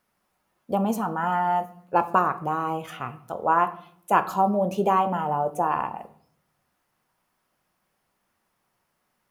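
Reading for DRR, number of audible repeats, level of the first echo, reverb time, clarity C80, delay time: 9.0 dB, none, none, 0.60 s, 18.5 dB, none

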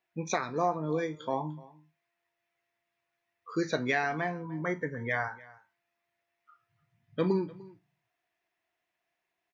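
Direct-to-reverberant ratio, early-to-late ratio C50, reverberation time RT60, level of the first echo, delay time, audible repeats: none, none, none, -21.5 dB, 0.298 s, 1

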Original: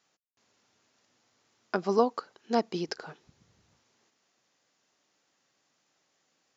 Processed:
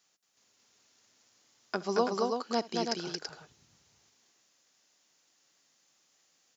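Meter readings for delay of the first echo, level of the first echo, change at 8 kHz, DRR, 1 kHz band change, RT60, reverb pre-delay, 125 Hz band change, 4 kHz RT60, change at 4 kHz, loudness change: 67 ms, -20.0 dB, n/a, none, -1.5 dB, none, none, -2.5 dB, none, +5.0 dB, -2.0 dB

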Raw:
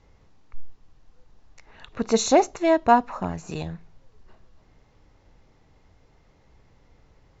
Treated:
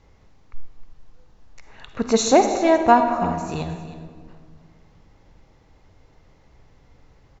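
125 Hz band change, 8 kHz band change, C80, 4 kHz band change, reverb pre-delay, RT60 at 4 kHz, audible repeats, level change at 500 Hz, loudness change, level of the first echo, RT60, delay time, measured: +3.5 dB, n/a, 8.0 dB, +3.0 dB, 40 ms, 1.1 s, 1, +3.0 dB, +3.5 dB, -15.0 dB, 1.8 s, 0.314 s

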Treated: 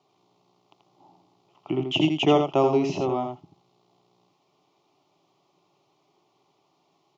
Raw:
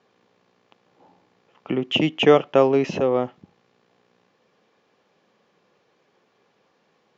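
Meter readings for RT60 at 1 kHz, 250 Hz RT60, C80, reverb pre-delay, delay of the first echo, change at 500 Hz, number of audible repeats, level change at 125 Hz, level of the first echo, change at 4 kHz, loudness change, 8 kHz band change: none, none, none, none, 84 ms, -5.0 dB, 1, 0.0 dB, -6.0 dB, -3.0 dB, -3.5 dB, n/a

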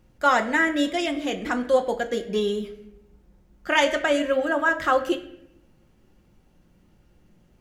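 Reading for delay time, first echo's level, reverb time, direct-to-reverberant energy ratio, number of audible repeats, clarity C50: none, none, 0.80 s, 4.0 dB, none, 12.5 dB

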